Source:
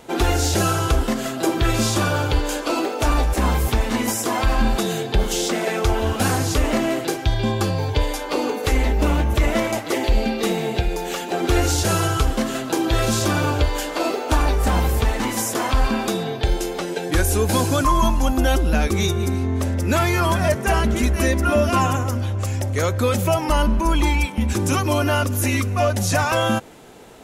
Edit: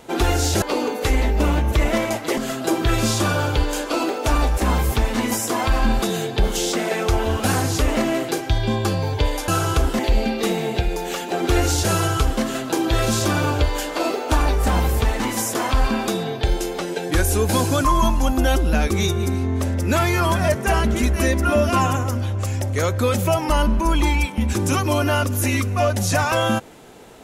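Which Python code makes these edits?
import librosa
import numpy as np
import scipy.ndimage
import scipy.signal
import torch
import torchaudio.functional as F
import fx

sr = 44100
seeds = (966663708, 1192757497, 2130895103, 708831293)

y = fx.edit(x, sr, fx.swap(start_s=0.62, length_s=0.51, other_s=8.24, other_length_s=1.75), tone=tone)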